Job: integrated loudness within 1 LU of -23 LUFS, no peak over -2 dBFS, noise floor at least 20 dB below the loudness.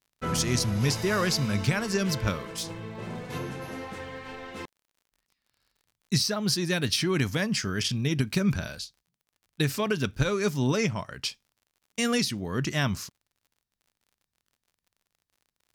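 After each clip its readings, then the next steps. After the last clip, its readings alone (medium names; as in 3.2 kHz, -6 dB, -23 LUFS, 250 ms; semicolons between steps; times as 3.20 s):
tick rate 42 per s; loudness -28.0 LUFS; peak level -12.5 dBFS; loudness target -23.0 LUFS
-> de-click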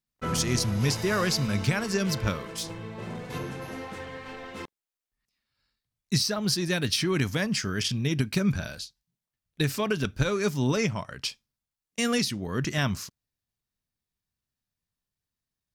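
tick rate 0.25 per s; loudness -28.0 LUFS; peak level -12.5 dBFS; loudness target -23.0 LUFS
-> trim +5 dB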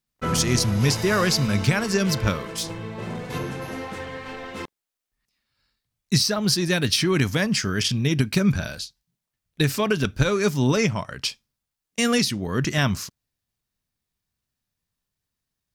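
loudness -23.0 LUFS; peak level -7.5 dBFS; noise floor -85 dBFS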